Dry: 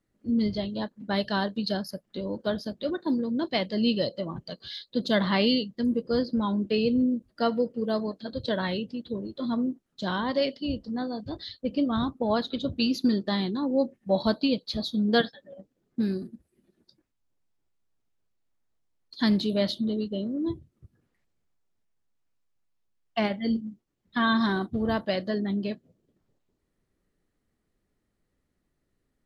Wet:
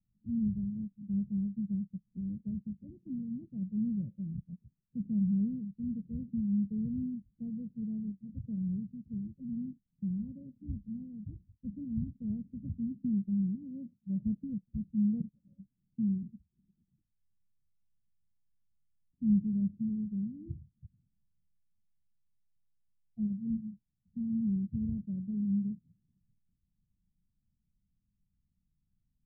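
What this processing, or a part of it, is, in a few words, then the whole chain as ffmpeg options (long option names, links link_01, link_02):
the neighbour's flat through the wall: -filter_complex "[0:a]lowpass=frequency=170:width=0.5412,lowpass=frequency=170:width=1.3066,equalizer=frequency=200:width_type=o:width=0.44:gain=5.5,asettb=1/sr,asplit=3[link_01][link_02][link_03];[link_01]atrim=end=13.554[link_04];[link_02]atrim=start=13.55:end=14.22,asetpts=PTS-STARTPTS,afade=type=in:duration=0.004:curve=qsin,afade=type=out:start_time=0.666:duration=0.004:curve=qsin,highpass=frequency=130:poles=1[link_05];[link_03]atrim=start=14.216[link_06];[link_04][link_05]acrossfade=duration=0.004:curve1=hsin:curve2=qsin[link_07];[link_07][link_06]acrossfade=duration=0.004:curve1=qsin:curve2=hsin"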